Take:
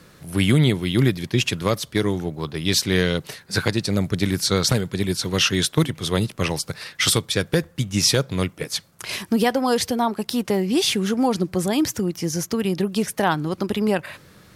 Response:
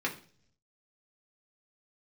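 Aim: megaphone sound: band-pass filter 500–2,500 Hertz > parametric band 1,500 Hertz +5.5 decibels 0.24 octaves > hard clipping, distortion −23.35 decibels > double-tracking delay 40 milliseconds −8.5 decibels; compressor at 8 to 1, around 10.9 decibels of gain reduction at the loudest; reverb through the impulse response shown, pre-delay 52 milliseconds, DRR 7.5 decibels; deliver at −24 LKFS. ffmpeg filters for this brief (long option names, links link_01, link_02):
-filter_complex "[0:a]acompressor=threshold=-25dB:ratio=8,asplit=2[link_01][link_02];[1:a]atrim=start_sample=2205,adelay=52[link_03];[link_02][link_03]afir=irnorm=-1:irlink=0,volume=-14.5dB[link_04];[link_01][link_04]amix=inputs=2:normalize=0,highpass=500,lowpass=2500,equalizer=frequency=1500:width_type=o:width=0.24:gain=5.5,asoftclip=type=hard:threshold=-22dB,asplit=2[link_05][link_06];[link_06]adelay=40,volume=-8.5dB[link_07];[link_05][link_07]amix=inputs=2:normalize=0,volume=11.5dB"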